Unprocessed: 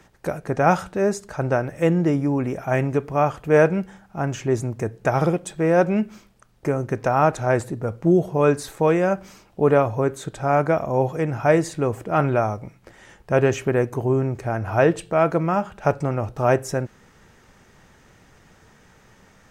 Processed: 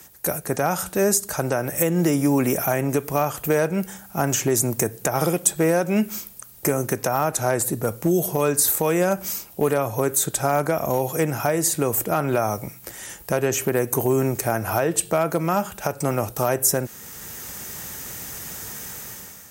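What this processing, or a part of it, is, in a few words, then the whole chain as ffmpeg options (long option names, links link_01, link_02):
FM broadcast chain: -filter_complex "[0:a]highpass=45,dynaudnorm=framelen=230:gausssize=5:maxgain=11.5dB,acrossover=split=160|1600[link_01][link_02][link_03];[link_01]acompressor=threshold=-33dB:ratio=4[link_04];[link_02]acompressor=threshold=-15dB:ratio=4[link_05];[link_03]acompressor=threshold=-34dB:ratio=4[link_06];[link_04][link_05][link_06]amix=inputs=3:normalize=0,aemphasis=mode=production:type=50fm,alimiter=limit=-10dB:level=0:latency=1:release=201,asoftclip=type=hard:threshold=-11dB,lowpass=frequency=15000:width=0.5412,lowpass=frequency=15000:width=1.3066,aemphasis=mode=production:type=50fm"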